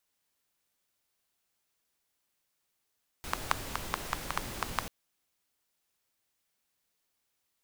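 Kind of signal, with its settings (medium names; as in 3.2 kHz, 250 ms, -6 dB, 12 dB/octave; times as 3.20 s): rain from filtered ticks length 1.64 s, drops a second 5.4, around 1.1 kHz, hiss -1 dB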